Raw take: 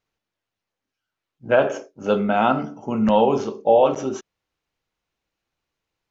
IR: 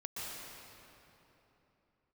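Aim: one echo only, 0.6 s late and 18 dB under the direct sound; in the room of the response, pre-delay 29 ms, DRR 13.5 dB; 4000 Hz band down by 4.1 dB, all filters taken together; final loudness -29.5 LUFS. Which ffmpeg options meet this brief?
-filter_complex "[0:a]equalizer=f=4k:t=o:g=-6,aecho=1:1:600:0.126,asplit=2[a][b];[1:a]atrim=start_sample=2205,adelay=29[c];[b][c]afir=irnorm=-1:irlink=0,volume=-15dB[d];[a][d]amix=inputs=2:normalize=0,volume=-9dB"

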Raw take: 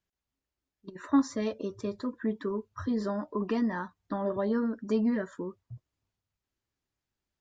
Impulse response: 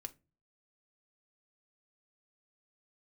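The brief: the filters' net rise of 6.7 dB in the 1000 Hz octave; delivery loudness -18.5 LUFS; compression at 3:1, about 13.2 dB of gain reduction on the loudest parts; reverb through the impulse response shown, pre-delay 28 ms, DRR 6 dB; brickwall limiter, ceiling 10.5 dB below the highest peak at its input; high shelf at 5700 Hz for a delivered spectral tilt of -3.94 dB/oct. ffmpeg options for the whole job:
-filter_complex "[0:a]equalizer=f=1k:t=o:g=8,highshelf=f=5.7k:g=-8.5,acompressor=threshold=-35dB:ratio=3,alimiter=level_in=8dB:limit=-24dB:level=0:latency=1,volume=-8dB,asplit=2[a][b];[1:a]atrim=start_sample=2205,adelay=28[c];[b][c]afir=irnorm=-1:irlink=0,volume=-1.5dB[d];[a][d]amix=inputs=2:normalize=0,volume=22dB"

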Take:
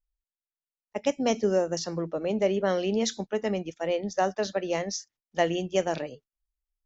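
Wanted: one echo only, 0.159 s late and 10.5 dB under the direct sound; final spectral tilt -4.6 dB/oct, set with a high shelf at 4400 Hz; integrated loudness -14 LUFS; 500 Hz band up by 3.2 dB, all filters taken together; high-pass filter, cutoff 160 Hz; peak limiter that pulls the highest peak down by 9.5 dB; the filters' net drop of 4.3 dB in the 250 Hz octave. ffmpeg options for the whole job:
-af "highpass=160,equalizer=f=250:t=o:g=-8,equalizer=f=500:t=o:g=6,highshelf=f=4.4k:g=-8.5,alimiter=limit=-18.5dB:level=0:latency=1,aecho=1:1:159:0.299,volume=15dB"

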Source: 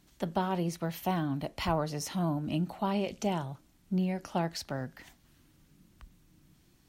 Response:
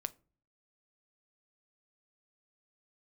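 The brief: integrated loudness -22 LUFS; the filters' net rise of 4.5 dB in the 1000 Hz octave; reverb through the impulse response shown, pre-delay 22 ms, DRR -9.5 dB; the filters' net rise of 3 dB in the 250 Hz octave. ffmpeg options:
-filter_complex "[0:a]equalizer=f=250:t=o:g=4.5,equalizer=f=1k:t=o:g=5.5,asplit=2[a][b];[1:a]atrim=start_sample=2205,adelay=22[c];[b][c]afir=irnorm=-1:irlink=0,volume=10.5dB[d];[a][d]amix=inputs=2:normalize=0,volume=-2dB"

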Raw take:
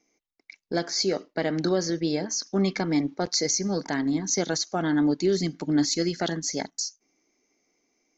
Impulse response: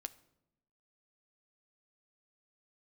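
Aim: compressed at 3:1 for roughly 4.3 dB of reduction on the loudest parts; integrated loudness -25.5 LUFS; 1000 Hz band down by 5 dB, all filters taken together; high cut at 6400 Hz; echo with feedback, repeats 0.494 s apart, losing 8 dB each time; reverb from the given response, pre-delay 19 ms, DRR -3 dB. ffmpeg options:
-filter_complex "[0:a]lowpass=6.4k,equalizer=f=1k:t=o:g=-8,acompressor=threshold=-25dB:ratio=3,aecho=1:1:494|988|1482|1976|2470:0.398|0.159|0.0637|0.0255|0.0102,asplit=2[a][b];[1:a]atrim=start_sample=2205,adelay=19[c];[b][c]afir=irnorm=-1:irlink=0,volume=6.5dB[d];[a][d]amix=inputs=2:normalize=0,volume=-1dB"

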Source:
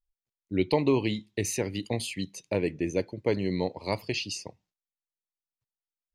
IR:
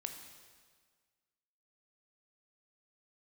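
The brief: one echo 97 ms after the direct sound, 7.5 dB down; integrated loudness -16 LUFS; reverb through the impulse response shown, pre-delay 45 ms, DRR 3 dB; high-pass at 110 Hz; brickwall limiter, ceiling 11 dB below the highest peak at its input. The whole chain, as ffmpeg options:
-filter_complex "[0:a]highpass=110,alimiter=limit=-22dB:level=0:latency=1,aecho=1:1:97:0.422,asplit=2[a][b];[1:a]atrim=start_sample=2205,adelay=45[c];[b][c]afir=irnorm=-1:irlink=0,volume=-1dB[d];[a][d]amix=inputs=2:normalize=0,volume=16dB"

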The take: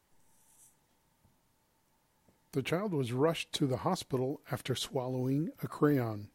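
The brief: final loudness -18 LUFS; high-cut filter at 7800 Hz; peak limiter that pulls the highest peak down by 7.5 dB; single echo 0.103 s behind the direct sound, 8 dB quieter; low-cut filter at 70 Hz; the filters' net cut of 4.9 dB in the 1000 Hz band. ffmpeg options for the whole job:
-af "highpass=70,lowpass=7.8k,equalizer=f=1k:t=o:g=-6.5,alimiter=level_in=0.5dB:limit=-24dB:level=0:latency=1,volume=-0.5dB,aecho=1:1:103:0.398,volume=17.5dB"

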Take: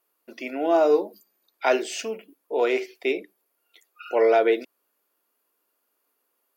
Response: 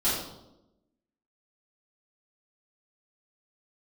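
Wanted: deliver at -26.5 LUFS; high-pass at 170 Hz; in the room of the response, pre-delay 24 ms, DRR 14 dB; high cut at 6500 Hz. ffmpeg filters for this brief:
-filter_complex "[0:a]highpass=170,lowpass=6.5k,asplit=2[a][b];[1:a]atrim=start_sample=2205,adelay=24[c];[b][c]afir=irnorm=-1:irlink=0,volume=-25dB[d];[a][d]amix=inputs=2:normalize=0,volume=-3dB"

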